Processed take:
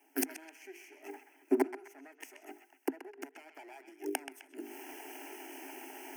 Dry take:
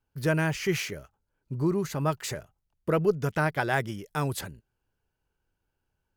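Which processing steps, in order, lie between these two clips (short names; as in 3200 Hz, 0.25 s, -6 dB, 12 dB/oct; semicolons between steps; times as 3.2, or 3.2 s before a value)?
minimum comb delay 0.33 ms; notches 50/100/150/200/250/300/350/400/450 Hz; in parallel at +3 dB: compressor, threshold -35 dBFS, peak gain reduction 15 dB; on the sum: limiter -19.5 dBFS, peak gain reduction 8.5 dB; reverse; upward compressor, threshold -35 dBFS; reverse; fixed phaser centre 760 Hz, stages 8; flipped gate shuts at -28 dBFS, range -34 dB; rippled Chebyshev high-pass 260 Hz, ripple 3 dB; narrowing echo 0.129 s, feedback 47%, band-pass 2300 Hz, level -7 dB; gain +16 dB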